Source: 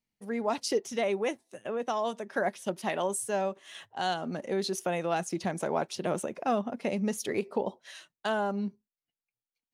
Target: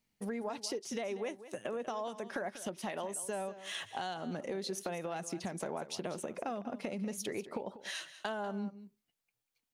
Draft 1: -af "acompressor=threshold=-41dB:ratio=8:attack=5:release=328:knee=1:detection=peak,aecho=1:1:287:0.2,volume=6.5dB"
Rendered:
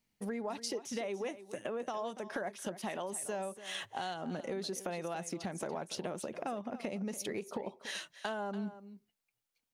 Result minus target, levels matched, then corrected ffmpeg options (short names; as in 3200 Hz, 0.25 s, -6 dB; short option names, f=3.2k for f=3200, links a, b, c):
echo 95 ms late
-af "acompressor=threshold=-41dB:ratio=8:attack=5:release=328:knee=1:detection=peak,aecho=1:1:192:0.2,volume=6.5dB"